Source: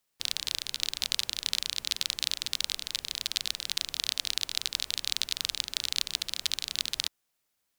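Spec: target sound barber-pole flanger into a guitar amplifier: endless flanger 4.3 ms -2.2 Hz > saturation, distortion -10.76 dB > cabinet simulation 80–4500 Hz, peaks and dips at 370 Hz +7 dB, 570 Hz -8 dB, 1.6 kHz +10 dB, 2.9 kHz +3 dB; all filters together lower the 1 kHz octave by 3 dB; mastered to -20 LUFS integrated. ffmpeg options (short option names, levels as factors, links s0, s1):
-filter_complex "[0:a]equalizer=f=1000:t=o:g=-7,asplit=2[s0][s1];[s1]adelay=4.3,afreqshift=-2.2[s2];[s0][s2]amix=inputs=2:normalize=1,asoftclip=threshold=0.0841,highpass=80,equalizer=f=370:t=q:w=4:g=7,equalizer=f=570:t=q:w=4:g=-8,equalizer=f=1600:t=q:w=4:g=10,equalizer=f=2900:t=q:w=4:g=3,lowpass=f=4500:w=0.5412,lowpass=f=4500:w=1.3066,volume=8.41"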